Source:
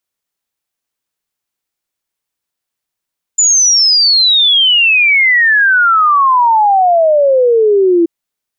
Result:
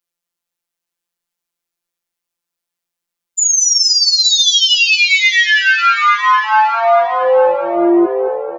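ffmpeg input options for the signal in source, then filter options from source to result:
-f lavfi -i "aevalsrc='0.501*clip(min(t,4.68-t)/0.01,0,1)*sin(2*PI*7100*4.68/log(330/7100)*(exp(log(330/7100)*t/4.68)-1))':duration=4.68:sample_rate=44100"
-filter_complex "[0:a]asplit=2[link_01][link_02];[link_02]aecho=0:1:859|1718|2577:0.398|0.0955|0.0229[link_03];[link_01][link_03]amix=inputs=2:normalize=0,afftfilt=real='hypot(re,im)*cos(PI*b)':imag='0':win_size=1024:overlap=0.75,asplit=2[link_04][link_05];[link_05]asplit=7[link_06][link_07][link_08][link_09][link_10][link_11][link_12];[link_06]adelay=225,afreqshift=50,volume=-10.5dB[link_13];[link_07]adelay=450,afreqshift=100,volume=-15.1dB[link_14];[link_08]adelay=675,afreqshift=150,volume=-19.7dB[link_15];[link_09]adelay=900,afreqshift=200,volume=-24.2dB[link_16];[link_10]adelay=1125,afreqshift=250,volume=-28.8dB[link_17];[link_11]adelay=1350,afreqshift=300,volume=-33.4dB[link_18];[link_12]adelay=1575,afreqshift=350,volume=-38dB[link_19];[link_13][link_14][link_15][link_16][link_17][link_18][link_19]amix=inputs=7:normalize=0[link_20];[link_04][link_20]amix=inputs=2:normalize=0"

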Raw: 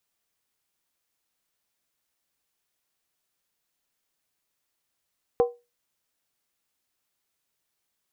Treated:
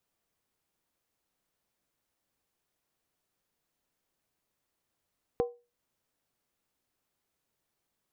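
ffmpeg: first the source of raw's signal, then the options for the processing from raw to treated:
-f lavfi -i "aevalsrc='0.211*pow(10,-3*t/0.25)*sin(2*PI*480*t)+0.075*pow(10,-3*t/0.198)*sin(2*PI*765.1*t)+0.0266*pow(10,-3*t/0.171)*sin(2*PI*1025.3*t)+0.00944*pow(10,-3*t/0.165)*sin(2*PI*1102.1*t)+0.00335*pow(10,-3*t/0.153)*sin(2*PI*1273.4*t)':duration=0.63:sample_rate=44100"
-af "acompressor=threshold=-41dB:ratio=2,tiltshelf=frequency=1200:gain=5"

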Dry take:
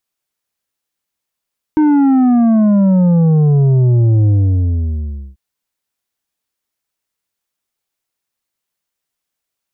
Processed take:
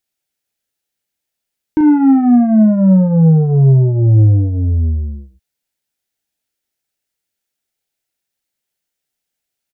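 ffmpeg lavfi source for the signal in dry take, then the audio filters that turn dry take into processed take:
-f lavfi -i "aevalsrc='0.376*clip((3.59-t)/1.08,0,1)*tanh(2.24*sin(2*PI*310*3.59/log(65/310)*(exp(log(65/310)*t/3.59)-1)))/tanh(2.24)':duration=3.59:sample_rate=44100"
-filter_complex "[0:a]equalizer=frequency=1100:width=4.9:gain=-13.5,asplit=2[link_01][link_02];[link_02]adelay=37,volume=-7.5dB[link_03];[link_01][link_03]amix=inputs=2:normalize=0"

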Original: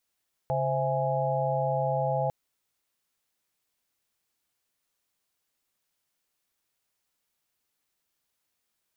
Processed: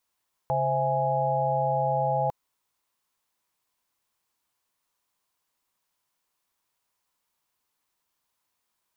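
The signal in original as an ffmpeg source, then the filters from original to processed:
-f lavfi -i "aevalsrc='0.0316*(sin(2*PI*138.59*t)+sin(2*PI*523.25*t)+sin(2*PI*659.26*t)+sin(2*PI*830.61*t))':duration=1.8:sample_rate=44100"
-af "equalizer=frequency=1000:width=2.9:gain=9.5"

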